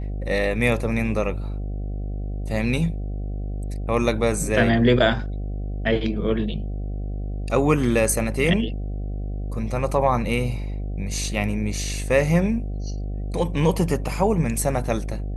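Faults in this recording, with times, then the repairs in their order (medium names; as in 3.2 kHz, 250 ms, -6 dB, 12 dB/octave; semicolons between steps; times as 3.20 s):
buzz 50 Hz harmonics 15 -28 dBFS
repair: de-hum 50 Hz, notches 15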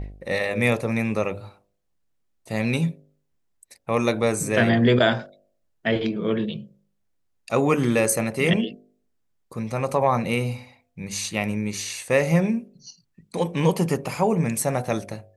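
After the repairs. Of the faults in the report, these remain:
nothing left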